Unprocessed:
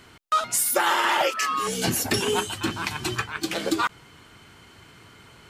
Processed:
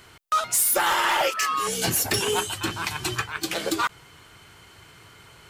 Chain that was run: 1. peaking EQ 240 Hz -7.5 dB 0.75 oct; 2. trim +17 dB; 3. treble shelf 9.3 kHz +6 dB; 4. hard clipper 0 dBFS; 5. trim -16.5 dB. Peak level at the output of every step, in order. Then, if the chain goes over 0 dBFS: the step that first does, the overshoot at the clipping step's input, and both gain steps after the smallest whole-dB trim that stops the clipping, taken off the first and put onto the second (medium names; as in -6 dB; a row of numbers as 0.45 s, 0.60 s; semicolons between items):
-10.5 dBFS, +6.5 dBFS, +8.0 dBFS, 0.0 dBFS, -16.5 dBFS; step 2, 8.0 dB; step 2 +9 dB, step 5 -8.5 dB